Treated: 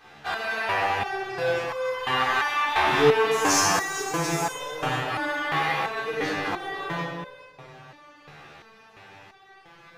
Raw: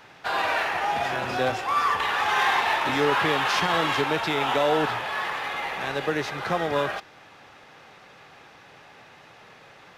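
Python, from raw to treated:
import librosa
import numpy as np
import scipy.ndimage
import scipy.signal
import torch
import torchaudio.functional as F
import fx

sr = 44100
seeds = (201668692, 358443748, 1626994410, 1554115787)

p1 = fx.high_shelf_res(x, sr, hz=4800.0, db=12.0, q=3.0, at=(3.31, 4.55))
p2 = fx.comb(p1, sr, ms=6.2, depth=0.93, at=(5.08, 5.81))
p3 = p2 + fx.echo_single(p2, sr, ms=415, db=-13.5, dry=0)
p4 = fx.room_shoebox(p3, sr, seeds[0], volume_m3=2000.0, walls='mixed', distance_m=3.7)
p5 = fx.resonator_held(p4, sr, hz=2.9, low_hz=74.0, high_hz=510.0)
y = p5 * 10.0 ** (4.5 / 20.0)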